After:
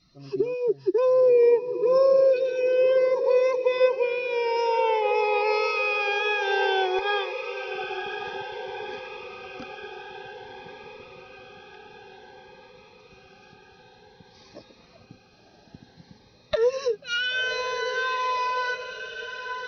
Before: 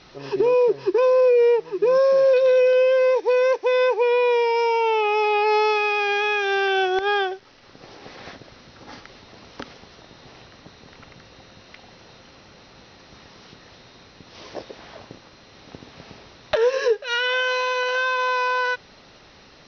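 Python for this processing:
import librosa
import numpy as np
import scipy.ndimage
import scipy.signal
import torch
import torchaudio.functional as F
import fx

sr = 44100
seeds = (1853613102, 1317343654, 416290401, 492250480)

y = fx.bin_expand(x, sr, power=1.5)
y = fx.echo_diffused(y, sr, ms=1052, feedback_pct=63, wet_db=-9)
y = fx.notch_cascade(y, sr, direction='rising', hz=0.54)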